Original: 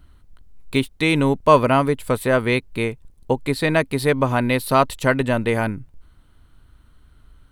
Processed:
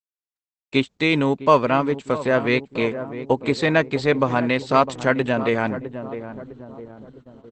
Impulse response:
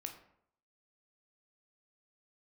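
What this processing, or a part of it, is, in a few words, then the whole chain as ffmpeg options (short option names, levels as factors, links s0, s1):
video call: -filter_complex "[0:a]highpass=150,asplit=2[s0][s1];[s1]adelay=656,lowpass=f=850:p=1,volume=0.266,asplit=2[s2][s3];[s3]adelay=656,lowpass=f=850:p=1,volume=0.51,asplit=2[s4][s5];[s5]adelay=656,lowpass=f=850:p=1,volume=0.51,asplit=2[s6][s7];[s7]adelay=656,lowpass=f=850:p=1,volume=0.51,asplit=2[s8][s9];[s9]adelay=656,lowpass=f=850:p=1,volume=0.51[s10];[s0][s2][s4][s6][s8][s10]amix=inputs=6:normalize=0,dynaudnorm=f=370:g=3:m=1.58,agate=range=0.00251:threshold=0.00794:ratio=16:detection=peak,volume=0.891" -ar 48000 -c:a libopus -b:a 12k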